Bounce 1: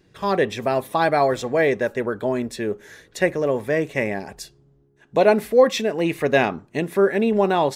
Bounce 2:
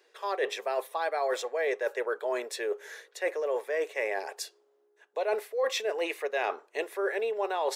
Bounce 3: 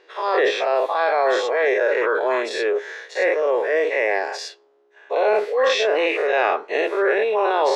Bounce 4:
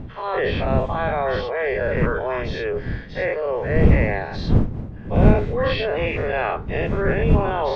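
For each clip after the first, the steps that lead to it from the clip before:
elliptic high-pass 430 Hz, stop band 80 dB; reverse; compressor 6:1, threshold -27 dBFS, peak gain reduction 16.5 dB; reverse
spectral dilation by 0.12 s; air absorption 150 m; gain +7 dB
nonlinear frequency compression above 2800 Hz 1.5:1; wind noise 160 Hz -18 dBFS; gain -4 dB

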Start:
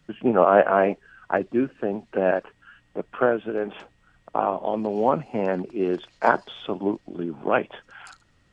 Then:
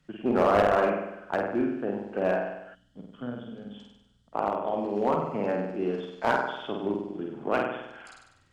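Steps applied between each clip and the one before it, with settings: flutter echo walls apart 8.4 m, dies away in 0.87 s; spectral gain 2.75–4.33, 300–2900 Hz -17 dB; one-sided clip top -13.5 dBFS; gain -6 dB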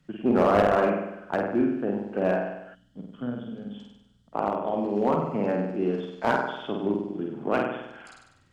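bell 190 Hz +5 dB 1.9 oct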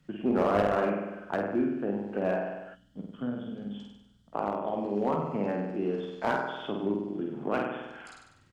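in parallel at +1 dB: compressor, threshold -32 dBFS, peak gain reduction 15.5 dB; on the sum: doubler 20 ms -12 dB; gain -7 dB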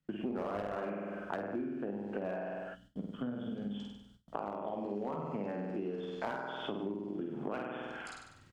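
gate with hold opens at -51 dBFS; compressor 6:1, threshold -37 dBFS, peak gain reduction 16 dB; gain +2 dB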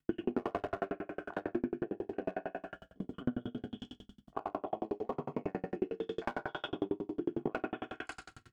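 reverb RT60 0.65 s, pre-delay 3 ms, DRR 1.5 dB; dB-ramp tremolo decaying 11 Hz, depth 40 dB; gain +7 dB

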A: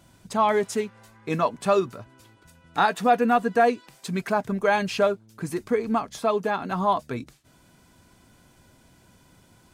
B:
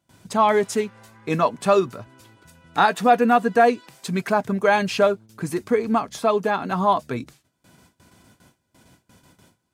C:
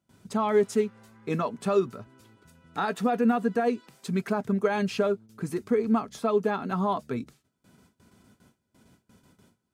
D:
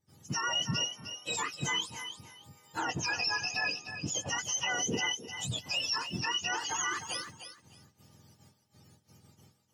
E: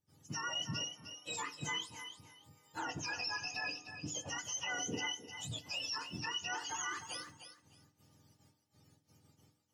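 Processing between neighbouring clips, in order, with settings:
HPF 70 Hz 12 dB/oct; gate with hold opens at -46 dBFS; gain +3.5 dB
low shelf 130 Hz +4 dB; limiter -10.5 dBFS, peak gain reduction 6.5 dB; small resonant body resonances 220/410/1300 Hz, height 7 dB, ringing for 35 ms; gain -8.5 dB
spectrum mirrored in octaves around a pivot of 1100 Hz; limiter -23.5 dBFS, peak gain reduction 9 dB; thinning echo 0.305 s, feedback 21%, level -9.5 dB
FDN reverb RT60 0.45 s, low-frequency decay 1.1×, high-frequency decay 0.55×, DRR 10.5 dB; gain -7.5 dB

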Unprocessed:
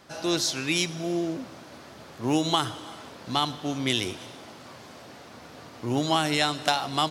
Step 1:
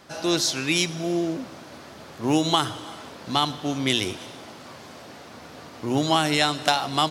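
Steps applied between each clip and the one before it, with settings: notches 60/120 Hz; gain +3 dB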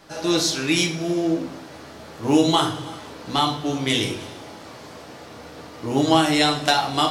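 shoebox room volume 41 m³, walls mixed, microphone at 0.6 m; gain -1 dB

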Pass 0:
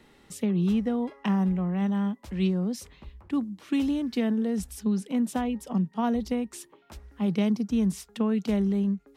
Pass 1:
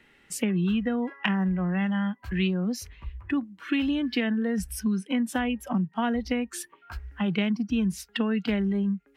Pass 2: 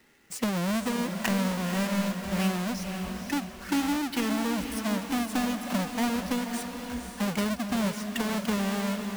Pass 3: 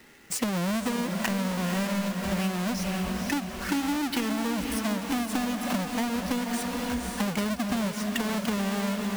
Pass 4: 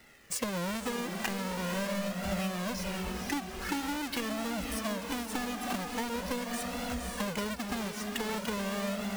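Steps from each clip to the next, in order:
spectral noise reduction 14 dB; band shelf 2100 Hz +10 dB 1.3 oct; compressor 2.5:1, threshold -35 dBFS, peak gain reduction 10.5 dB; gain +8 dB
half-waves squared off; low shelf 100 Hz -7 dB; diffused feedback echo 0.51 s, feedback 46%, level -6 dB; gain -6 dB
compressor, threshold -34 dBFS, peak gain reduction 11 dB; gain +8 dB
flange 0.44 Hz, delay 1.4 ms, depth 1.2 ms, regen +30%

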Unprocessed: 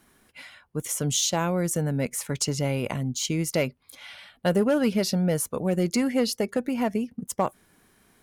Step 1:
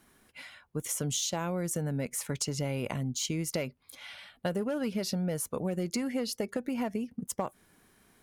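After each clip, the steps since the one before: compressor, threshold -26 dBFS, peak gain reduction 8 dB; gain -2.5 dB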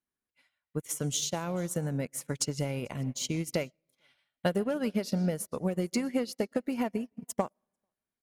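echo 0.443 s -23.5 dB; reverb RT60 1.3 s, pre-delay 70 ms, DRR 18.5 dB; upward expander 2.5:1, over -52 dBFS; gain +5.5 dB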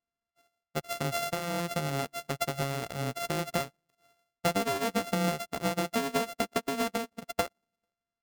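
sample sorter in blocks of 64 samples

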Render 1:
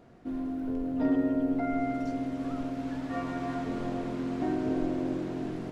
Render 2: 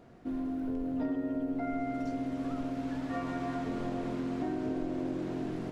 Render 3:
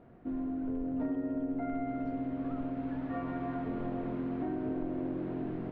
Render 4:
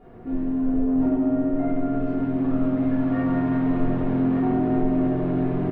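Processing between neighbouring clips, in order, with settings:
compressor, threshold -30 dBFS, peak gain reduction 8 dB
overloaded stage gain 26 dB; air absorption 490 m
echo 1.186 s -7 dB; reverb RT60 1.2 s, pre-delay 3 ms, DRR -8 dB; in parallel at -6 dB: soft clip -23 dBFS, distortion -11 dB; on the sum: gain -2 dB

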